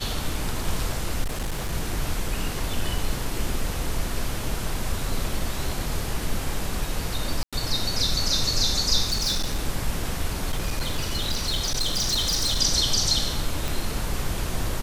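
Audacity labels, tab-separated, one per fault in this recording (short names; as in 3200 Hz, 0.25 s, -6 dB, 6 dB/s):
1.230000	1.730000	clipped -23.5 dBFS
2.980000	2.980000	gap 2.4 ms
7.430000	7.530000	gap 96 ms
9.050000	9.590000	clipped -20.5 dBFS
10.480000	12.600000	clipped -20 dBFS
13.680000	13.680000	pop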